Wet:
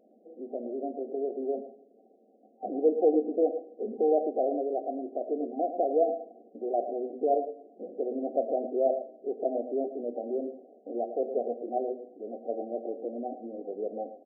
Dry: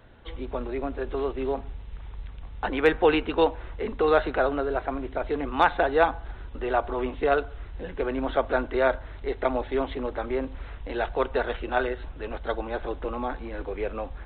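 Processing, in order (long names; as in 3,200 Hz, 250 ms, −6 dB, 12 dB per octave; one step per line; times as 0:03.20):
mains-hum notches 50/100/150/200/250 Hz
coupled-rooms reverb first 0.57 s, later 1.5 s, DRR 8 dB
brick-wall band-pass 190–780 Hz
on a send: single-tap delay 111 ms −12 dB
on the sum: level −3 dB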